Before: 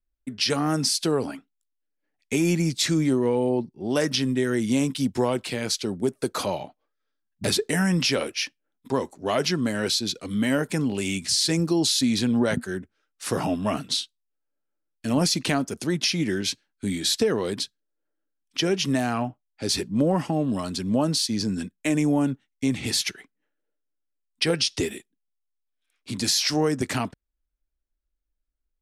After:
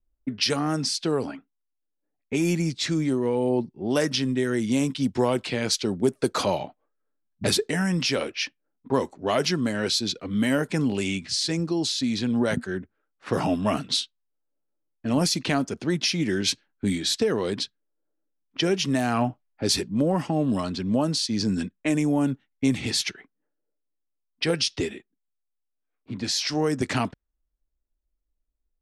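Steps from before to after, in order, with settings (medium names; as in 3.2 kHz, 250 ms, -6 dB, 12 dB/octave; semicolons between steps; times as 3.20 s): gain riding 0.5 s; level-controlled noise filter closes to 870 Hz, open at -19 dBFS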